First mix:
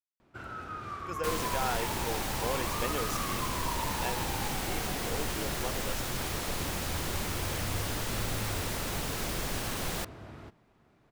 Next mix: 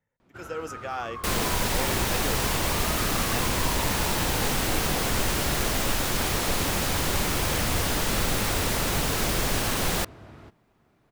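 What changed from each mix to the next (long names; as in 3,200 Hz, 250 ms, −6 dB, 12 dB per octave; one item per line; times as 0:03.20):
speech: entry −0.70 s
second sound +8.5 dB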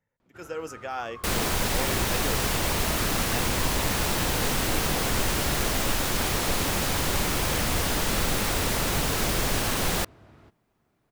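first sound −6.5 dB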